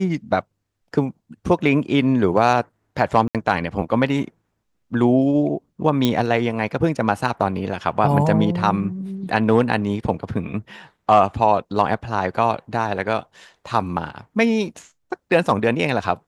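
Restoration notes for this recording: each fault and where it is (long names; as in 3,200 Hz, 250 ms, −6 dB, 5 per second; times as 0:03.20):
0:03.28–0:03.35: drop-out 67 ms
0:06.05: click −5 dBFS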